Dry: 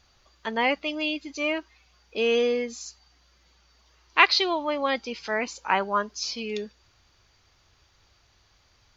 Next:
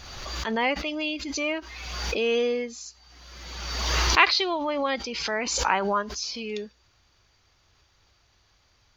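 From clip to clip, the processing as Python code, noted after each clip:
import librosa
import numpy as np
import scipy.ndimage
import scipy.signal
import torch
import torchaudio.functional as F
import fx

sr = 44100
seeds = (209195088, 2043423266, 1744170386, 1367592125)

y = fx.pre_swell(x, sr, db_per_s=34.0)
y = y * 10.0 ** (-1.5 / 20.0)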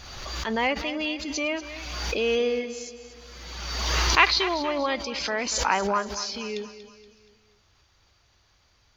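y = fx.echo_feedback(x, sr, ms=237, feedback_pct=46, wet_db=-13.5)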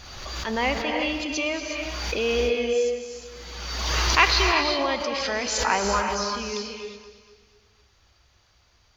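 y = fx.rev_gated(x, sr, seeds[0], gate_ms=400, shape='rising', drr_db=3.0)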